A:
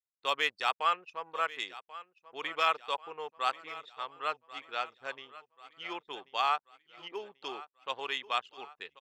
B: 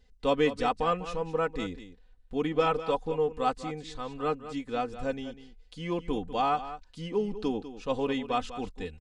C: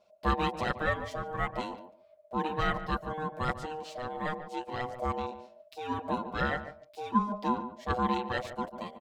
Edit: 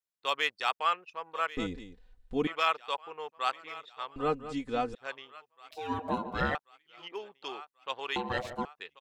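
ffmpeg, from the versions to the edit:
-filter_complex "[1:a]asplit=2[a][b];[2:a]asplit=2[c][d];[0:a]asplit=5[e][f][g][h][i];[e]atrim=end=1.572[j];[a]atrim=start=1.568:end=2.472[k];[f]atrim=start=2.468:end=4.162[l];[b]atrim=start=4.158:end=4.952[m];[g]atrim=start=4.948:end=5.712[n];[c]atrim=start=5.708:end=6.552[o];[h]atrim=start=6.548:end=8.162[p];[d]atrim=start=8.158:end=8.652[q];[i]atrim=start=8.648[r];[j][k]acrossfade=d=0.004:c1=hsin:c2=hsin[s];[s][l]acrossfade=d=0.004:c1=hsin:c2=hsin[t];[t][m]acrossfade=d=0.004:c1=hsin:c2=hsin[u];[u][n]acrossfade=d=0.004:c1=hsin:c2=hsin[v];[v][o]acrossfade=d=0.004:c1=hsin:c2=hsin[w];[w][p]acrossfade=d=0.004:c1=hsin:c2=hsin[x];[x][q]acrossfade=d=0.004:c1=hsin:c2=hsin[y];[y][r]acrossfade=d=0.004:c1=hsin:c2=hsin"

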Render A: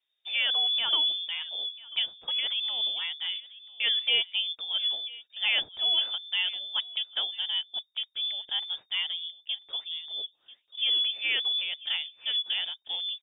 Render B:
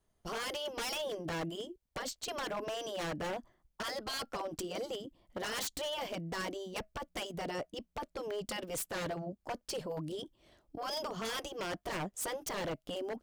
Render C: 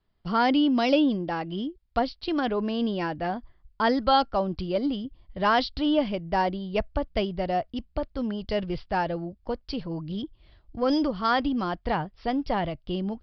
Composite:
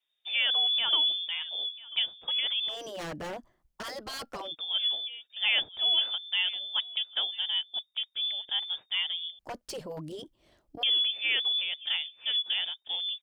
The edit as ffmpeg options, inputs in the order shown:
-filter_complex "[1:a]asplit=2[a][b];[0:a]asplit=3[c][d][e];[c]atrim=end=2.81[f];[a]atrim=start=2.65:end=4.57[g];[d]atrim=start=4.41:end=9.392[h];[b]atrim=start=9.388:end=10.832[i];[e]atrim=start=10.828[j];[f][g]acrossfade=d=0.16:c1=tri:c2=tri[k];[k][h]acrossfade=d=0.16:c1=tri:c2=tri[l];[l][i]acrossfade=d=0.004:c1=hsin:c2=hsin[m];[m][j]acrossfade=d=0.004:c1=hsin:c2=hsin"

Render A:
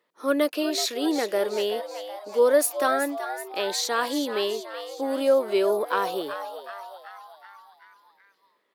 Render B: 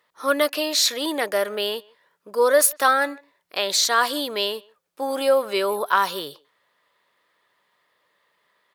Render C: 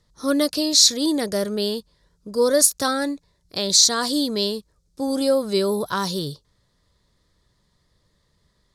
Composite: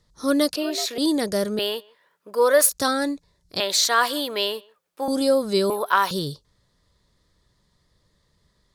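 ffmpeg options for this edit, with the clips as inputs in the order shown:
-filter_complex "[1:a]asplit=3[a][b][c];[2:a]asplit=5[d][e][f][g][h];[d]atrim=end=0.562[i];[0:a]atrim=start=0.558:end=0.982[j];[e]atrim=start=0.978:end=1.592[k];[a]atrim=start=1.588:end=2.692[l];[f]atrim=start=2.688:end=3.602[m];[b]atrim=start=3.598:end=5.082[n];[g]atrim=start=5.078:end=5.702[o];[c]atrim=start=5.698:end=6.112[p];[h]atrim=start=6.108[q];[i][j]acrossfade=d=0.004:c1=hsin:c2=hsin[r];[r][k]acrossfade=d=0.004:c1=hsin:c2=hsin[s];[s][l]acrossfade=d=0.004:c1=hsin:c2=hsin[t];[t][m]acrossfade=d=0.004:c1=hsin:c2=hsin[u];[u][n]acrossfade=d=0.004:c1=hsin:c2=hsin[v];[v][o]acrossfade=d=0.004:c1=hsin:c2=hsin[w];[w][p]acrossfade=d=0.004:c1=hsin:c2=hsin[x];[x][q]acrossfade=d=0.004:c1=hsin:c2=hsin"

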